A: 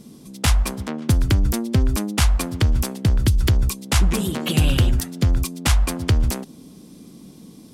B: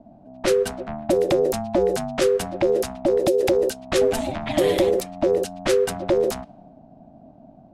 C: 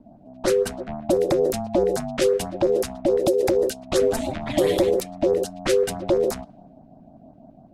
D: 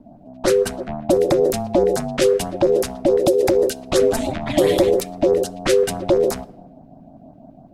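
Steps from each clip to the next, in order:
ring modulator 660 Hz; low-pass opened by the level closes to 750 Hz, open at -16 dBFS; frequency shift -210 Hz
LFO notch saw up 6 Hz 610–3600 Hz
shoebox room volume 3300 m³, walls furnished, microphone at 0.31 m; gain +4 dB

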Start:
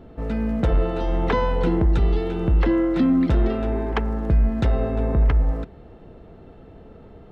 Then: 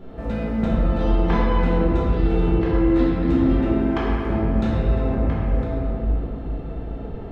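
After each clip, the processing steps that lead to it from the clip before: compressor 4:1, threshold -27 dBFS, peak gain reduction 11 dB; shoebox room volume 180 m³, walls hard, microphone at 1.2 m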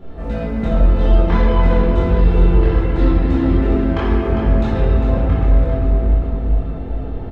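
chorus voices 6, 0.43 Hz, delay 24 ms, depth 1.8 ms; feedback echo 0.402 s, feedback 52%, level -8 dB; gain +5.5 dB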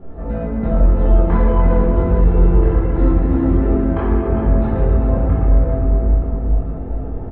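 LPF 1400 Hz 12 dB/oct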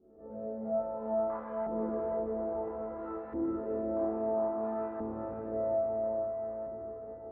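resonator bank D2 fifth, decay 0.5 s; LFO band-pass saw up 0.6 Hz 330–1500 Hz; diffused feedback echo 0.505 s, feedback 49%, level -4.5 dB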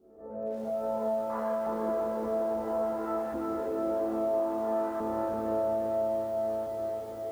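low shelf 420 Hz -8.5 dB; in parallel at +0.5 dB: negative-ratio compressor -40 dBFS, ratio -1; on the sum: lo-fi delay 0.338 s, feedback 55%, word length 9-bit, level -5 dB

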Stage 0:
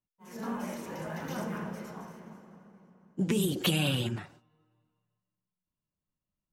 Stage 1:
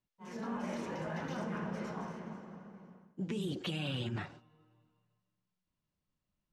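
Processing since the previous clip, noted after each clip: LPF 5200 Hz 12 dB/oct; reverse; compressor 5:1, threshold -39 dBFS, peak gain reduction 14.5 dB; reverse; gain +3.5 dB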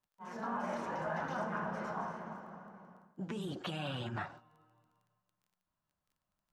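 band shelf 1000 Hz +9.5 dB; crackle 15/s -55 dBFS; gain -3.5 dB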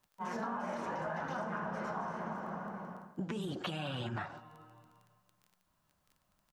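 compressor 6:1, threshold -47 dBFS, peak gain reduction 13.5 dB; outdoor echo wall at 36 m, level -28 dB; gain +11 dB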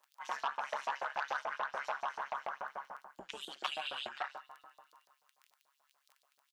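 LFO high-pass saw up 6.9 Hz 580–4800 Hz; AM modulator 140 Hz, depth 55%; core saturation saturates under 1700 Hz; gain +4 dB

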